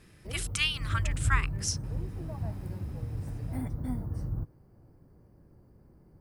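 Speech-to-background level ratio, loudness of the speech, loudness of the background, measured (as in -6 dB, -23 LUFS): 3.0 dB, -32.5 LUFS, -35.5 LUFS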